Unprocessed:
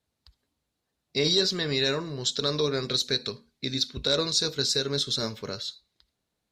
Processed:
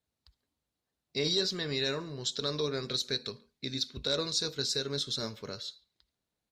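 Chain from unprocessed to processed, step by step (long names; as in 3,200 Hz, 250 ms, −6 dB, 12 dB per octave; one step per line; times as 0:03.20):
far-end echo of a speakerphone 140 ms, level −25 dB
level −6 dB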